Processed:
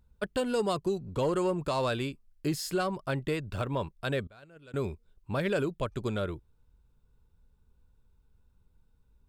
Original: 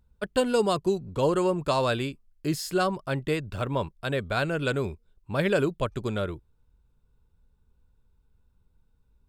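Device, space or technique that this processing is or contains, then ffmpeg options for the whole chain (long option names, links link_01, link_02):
soft clipper into limiter: -filter_complex "[0:a]asoftclip=type=tanh:threshold=-13.5dB,alimiter=limit=-21dB:level=0:latency=1:release=293,asettb=1/sr,asplit=3[link_01][link_02][link_03];[link_01]atrim=end=4.274[link_04];[link_02]atrim=start=4.27:end=4.74,asetpts=PTS-STARTPTS,afade=type=in:duration=0.004:curve=qsin,afade=type=out:start_time=0.466:duration=0.004:curve=qsin,agate=range=-24dB:threshold=-25dB:ratio=16:detection=peak[link_05];[link_03]atrim=start=4.736[link_06];[link_04][link_05]acrossfade=duration=0.004:curve1=hsin:curve2=qsin[link_07];[link_07][link_06]acrossfade=duration=0.004:curve1=qsin:curve2=hsin"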